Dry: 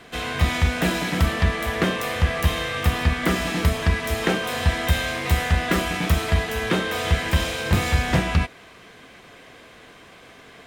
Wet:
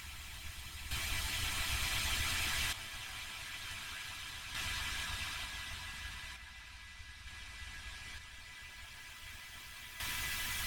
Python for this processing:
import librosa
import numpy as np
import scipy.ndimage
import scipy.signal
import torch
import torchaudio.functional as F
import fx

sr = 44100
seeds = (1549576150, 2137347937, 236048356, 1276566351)

y = scipy.signal.sosfilt(scipy.signal.ellip(3, 1.0, 40, [170.0, 790.0], 'bandstop', fs=sr, output='sos'), x)
y = fx.tone_stack(y, sr, knobs='5-5-5')
y = fx.dmg_noise_colour(y, sr, seeds[0], colour='brown', level_db=-52.0)
y = fx.peak_eq(y, sr, hz=200.0, db=10.0, octaves=0.25)
y = y + 0.92 * np.pad(y, (int(3.0 * sr / 1000.0), 0))[:len(y)]
y = fx.over_compress(y, sr, threshold_db=-37.0, ratio=-1.0)
y = fx.paulstretch(y, sr, seeds[1], factor=29.0, window_s=0.25, from_s=3.69)
y = fx.hpss(y, sr, part='harmonic', gain_db=-15)
y = fx.tremolo_random(y, sr, seeds[2], hz=1.1, depth_pct=75)
y = fx.echo_stepped(y, sr, ms=671, hz=680.0, octaves=1.4, feedback_pct=70, wet_db=-11.0)
y = y * 10.0 ** (8.0 / 20.0)